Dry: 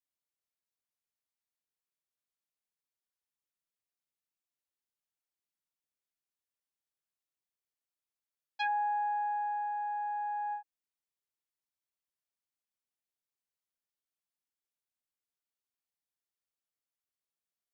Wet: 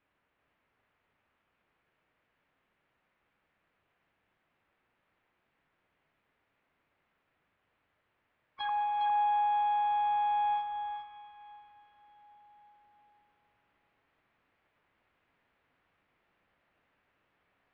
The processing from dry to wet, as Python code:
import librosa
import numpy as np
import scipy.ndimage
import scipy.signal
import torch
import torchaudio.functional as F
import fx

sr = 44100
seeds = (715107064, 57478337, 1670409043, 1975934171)

p1 = x + 0.5 * 10.0 ** (-39.5 / 20.0) * np.diff(np.sign(x), prepend=np.sign(x[:1]))
p2 = scipy.signal.sosfilt(scipy.signal.butter(4, 1800.0, 'lowpass', fs=sr, output='sos'), p1)
p3 = fx.tilt_eq(p2, sr, slope=-6.0)
p4 = fx.rider(p3, sr, range_db=10, speed_s=0.5)
p5 = p3 + (p4 * librosa.db_to_amplitude(2.0))
p6 = fx.formant_shift(p5, sr, semitones=5)
p7 = p6 + fx.echo_single(p6, sr, ms=407, db=-5.5, dry=0)
p8 = fx.rev_plate(p7, sr, seeds[0], rt60_s=4.6, hf_ratio=0.95, predelay_ms=0, drr_db=7.5)
y = p8 * librosa.db_to_amplitude(-8.5)